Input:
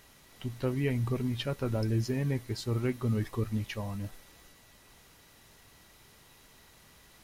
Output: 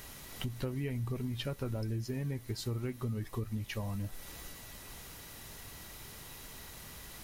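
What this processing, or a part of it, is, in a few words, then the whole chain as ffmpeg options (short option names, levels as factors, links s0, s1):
ASMR close-microphone chain: -af "lowshelf=f=120:g=5,acompressor=threshold=0.00794:ratio=5,highshelf=f=9800:g=8,volume=2.24"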